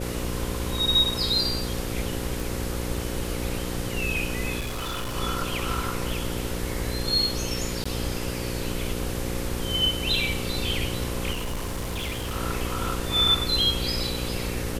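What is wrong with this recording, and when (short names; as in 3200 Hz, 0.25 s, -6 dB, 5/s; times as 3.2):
buzz 60 Hz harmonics 9 -32 dBFS
2.4 pop
4.59–5.16 clipped -27 dBFS
7.84–7.86 gap 15 ms
11.32–12.37 clipped -26 dBFS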